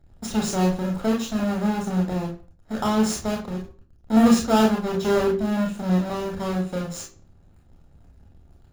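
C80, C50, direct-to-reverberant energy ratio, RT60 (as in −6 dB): 13.0 dB, 8.0 dB, 0.0 dB, 0.45 s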